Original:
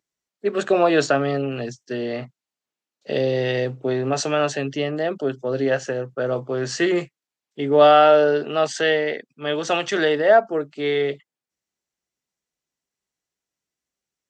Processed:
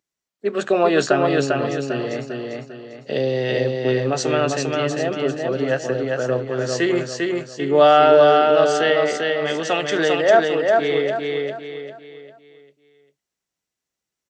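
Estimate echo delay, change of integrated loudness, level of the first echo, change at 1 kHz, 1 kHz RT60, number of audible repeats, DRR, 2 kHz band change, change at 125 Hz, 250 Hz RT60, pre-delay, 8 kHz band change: 398 ms, +1.5 dB, −3.0 dB, +2.0 dB, no reverb audible, 4, no reverb audible, +2.0 dB, +2.5 dB, no reverb audible, no reverb audible, +2.0 dB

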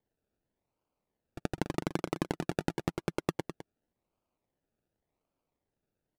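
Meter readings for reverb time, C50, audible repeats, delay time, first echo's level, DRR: no reverb audible, no reverb audible, 1, 207 ms, −11.0 dB, no reverb audible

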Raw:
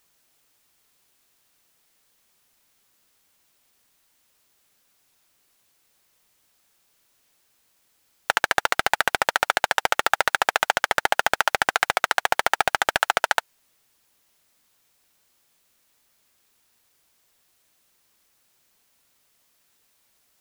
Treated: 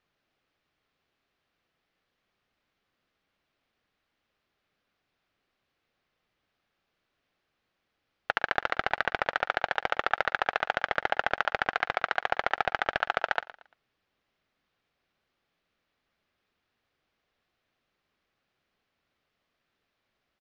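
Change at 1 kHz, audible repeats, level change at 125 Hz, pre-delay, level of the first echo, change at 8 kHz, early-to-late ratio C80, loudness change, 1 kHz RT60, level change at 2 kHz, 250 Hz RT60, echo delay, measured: −6.5 dB, 2, −4.0 dB, no reverb audible, −17.0 dB, below −25 dB, no reverb audible, −7.0 dB, no reverb audible, −6.5 dB, no reverb audible, 115 ms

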